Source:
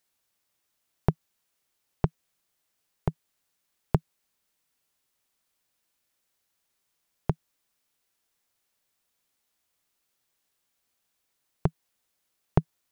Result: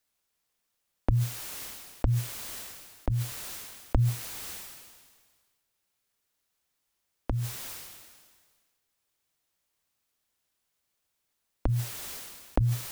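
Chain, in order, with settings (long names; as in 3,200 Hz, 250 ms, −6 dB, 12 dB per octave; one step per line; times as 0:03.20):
frequency shifter −120 Hz
level that may fall only so fast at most 36 dB per second
level −2 dB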